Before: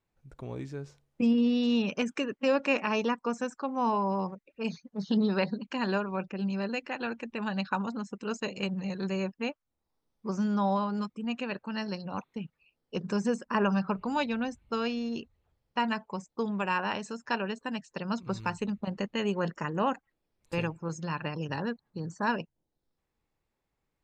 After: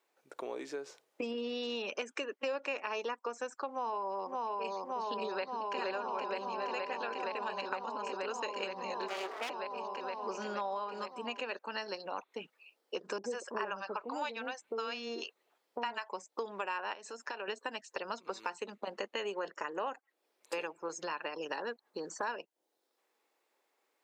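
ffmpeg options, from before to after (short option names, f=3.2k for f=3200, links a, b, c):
-filter_complex "[0:a]asplit=2[a][b];[b]afade=t=in:st=3.69:d=0.01,afade=t=out:st=4.74:d=0.01,aecho=0:1:570|1140|1710|2280|2850|3420|3990|4560|5130|5700|6270|6840:0.749894|0.63741|0.541799|0.460529|0.391449|0.332732|0.282822|0.240399|0.204339|0.173688|0.147635|0.12549[c];[a][c]amix=inputs=2:normalize=0,asplit=2[d][e];[e]afade=t=in:st=5.3:d=0.01,afade=t=out:st=5.77:d=0.01,aecho=0:1:470|940|1410|1880|2350|2820|3290|3760|4230|4700|5170|5640:0.794328|0.675179|0.573902|0.487817|0.414644|0.352448|0.299581|0.254643|0.216447|0.18398|0.156383|0.132925[f];[d][f]amix=inputs=2:normalize=0,asettb=1/sr,asplit=3[g][h][i];[g]atrim=end=9.084[j];[h]atrim=start=9.08:end=9.5,asetpts=PTS-STARTPTS,afade=t=in:d=0.004:c=qsin,afade=t=out:st=0.416:d=0.004:c=qsin,aeval=exprs='abs(val(0))':c=same[k];[i]atrim=start=9.496[l];[j][k]acrossfade=d=0.004:c1=hsin:c2=qsin[m];[m][l]acrossfade=d=0.004:c1=qsin:c2=hsin,asettb=1/sr,asplit=3[n][o][p];[n]atrim=end=13.184[q];[o]atrim=start=13.18:end=16.09,asetpts=PTS-STARTPTS,afade=t=in:d=0.004:c=qsin,afade=t=out:st=2.906:d=0.004:c=qsin,acrossover=split=580[r][s];[s]adelay=60[t];[r][t]amix=inputs=2:normalize=0,atrim=end_sample=128331[u];[p]atrim=start=16.086[v];[q][u]acrossfade=d=0.004:c1=hsin:c2=qsin[w];[w][v]acrossfade=d=0.004:c1=qsin:c2=hsin,asettb=1/sr,asplit=3[x][y][z];[x]atrim=end=16.934[aa];[y]atrim=start=16.93:end=17.48,asetpts=PTS-STARTPTS,afade=t=in:d=0.004:c=qsin,afade=t=out:st=0.546:d=0.004:c=qsin,acompressor=threshold=-41dB:ratio=5:attack=3.2:release=140:knee=1:detection=peak[ab];[z]atrim=start=17.476[ac];[aa][ab]acrossfade=d=0.004:c1=hsin:c2=qsin[ad];[ad][ac]acrossfade=d=0.004:c1=qsin:c2=hsin,highpass=f=370:w=0.5412,highpass=f=370:w=1.3066,acompressor=threshold=-45dB:ratio=4,volume=8dB"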